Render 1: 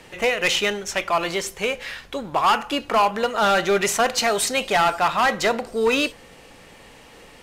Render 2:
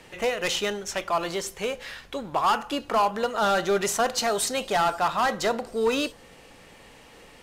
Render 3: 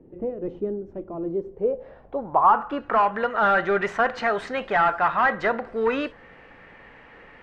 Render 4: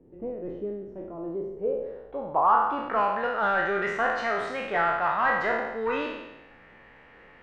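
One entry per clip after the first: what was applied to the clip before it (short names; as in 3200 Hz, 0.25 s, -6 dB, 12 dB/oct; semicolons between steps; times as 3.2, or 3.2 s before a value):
dynamic EQ 2300 Hz, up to -7 dB, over -37 dBFS, Q 2; gain -3.5 dB
low-pass sweep 330 Hz -> 1800 Hz, 1.34–3.04
spectral trails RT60 1.01 s; gain -7 dB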